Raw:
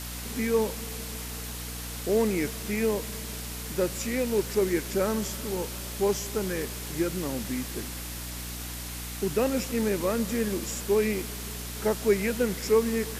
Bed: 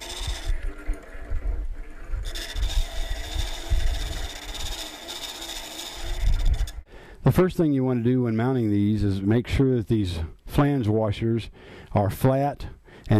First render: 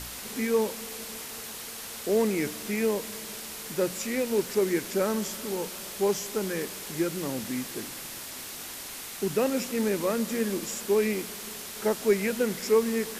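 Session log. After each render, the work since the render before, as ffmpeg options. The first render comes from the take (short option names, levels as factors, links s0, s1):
-af "bandreject=f=60:t=h:w=4,bandreject=f=120:t=h:w=4,bandreject=f=180:t=h:w=4,bandreject=f=240:t=h:w=4,bandreject=f=300:t=h:w=4"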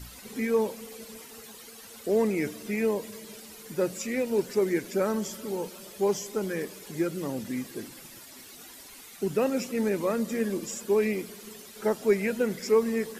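-af "afftdn=nr=12:nf=-40"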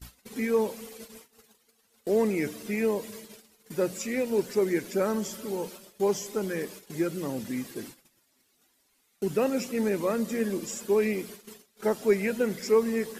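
-af "agate=range=0.0794:threshold=0.00708:ratio=16:detection=peak"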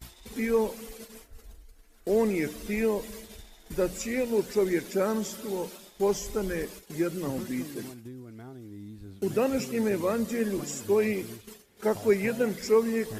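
-filter_complex "[1:a]volume=0.0841[s0];[0:a][s0]amix=inputs=2:normalize=0"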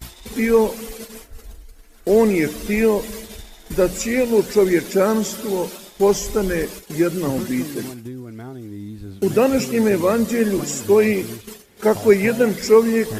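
-af "volume=3.16"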